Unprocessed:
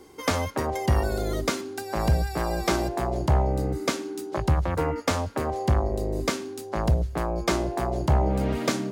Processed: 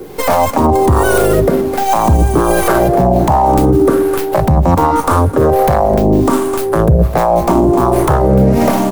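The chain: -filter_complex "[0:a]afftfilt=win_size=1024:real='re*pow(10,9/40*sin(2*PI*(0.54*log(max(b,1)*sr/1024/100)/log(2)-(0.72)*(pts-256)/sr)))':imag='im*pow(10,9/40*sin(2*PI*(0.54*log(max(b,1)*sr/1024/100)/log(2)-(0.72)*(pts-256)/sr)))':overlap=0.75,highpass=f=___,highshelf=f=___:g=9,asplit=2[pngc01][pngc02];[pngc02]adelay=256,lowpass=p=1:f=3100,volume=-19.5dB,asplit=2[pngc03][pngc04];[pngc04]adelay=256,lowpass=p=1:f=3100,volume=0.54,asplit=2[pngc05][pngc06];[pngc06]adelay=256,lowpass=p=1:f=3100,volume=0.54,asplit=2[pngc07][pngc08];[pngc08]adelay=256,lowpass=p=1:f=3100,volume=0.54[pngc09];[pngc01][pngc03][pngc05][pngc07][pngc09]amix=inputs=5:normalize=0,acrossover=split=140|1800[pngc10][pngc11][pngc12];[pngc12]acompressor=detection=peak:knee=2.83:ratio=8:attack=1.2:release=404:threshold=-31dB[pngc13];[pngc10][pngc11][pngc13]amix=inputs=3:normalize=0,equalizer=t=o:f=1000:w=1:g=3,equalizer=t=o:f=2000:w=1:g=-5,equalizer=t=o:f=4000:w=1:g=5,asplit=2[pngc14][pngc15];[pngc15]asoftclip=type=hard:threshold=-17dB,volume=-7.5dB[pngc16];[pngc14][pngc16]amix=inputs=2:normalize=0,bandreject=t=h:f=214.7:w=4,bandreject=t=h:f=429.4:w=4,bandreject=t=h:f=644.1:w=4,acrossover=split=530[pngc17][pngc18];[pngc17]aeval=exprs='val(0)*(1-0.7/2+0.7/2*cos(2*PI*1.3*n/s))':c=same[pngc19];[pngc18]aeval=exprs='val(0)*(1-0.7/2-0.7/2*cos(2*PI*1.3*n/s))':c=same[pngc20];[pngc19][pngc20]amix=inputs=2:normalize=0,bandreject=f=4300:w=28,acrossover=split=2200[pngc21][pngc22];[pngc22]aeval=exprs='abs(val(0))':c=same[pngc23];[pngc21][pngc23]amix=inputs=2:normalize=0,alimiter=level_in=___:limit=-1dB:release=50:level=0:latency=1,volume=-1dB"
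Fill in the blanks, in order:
85, 6500, 20.5dB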